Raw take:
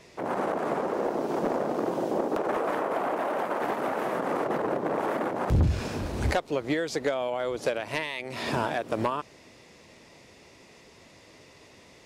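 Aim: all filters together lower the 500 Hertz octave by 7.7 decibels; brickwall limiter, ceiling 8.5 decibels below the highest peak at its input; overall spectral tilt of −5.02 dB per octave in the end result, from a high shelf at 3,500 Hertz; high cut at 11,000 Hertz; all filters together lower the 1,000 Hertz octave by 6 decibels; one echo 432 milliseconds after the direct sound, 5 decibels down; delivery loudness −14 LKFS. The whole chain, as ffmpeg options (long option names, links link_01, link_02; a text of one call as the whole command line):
ffmpeg -i in.wav -af "lowpass=11000,equalizer=frequency=500:width_type=o:gain=-8.5,equalizer=frequency=1000:width_type=o:gain=-4,highshelf=frequency=3500:gain=-7,alimiter=level_in=2dB:limit=-24dB:level=0:latency=1,volume=-2dB,aecho=1:1:432:0.562,volume=21dB" out.wav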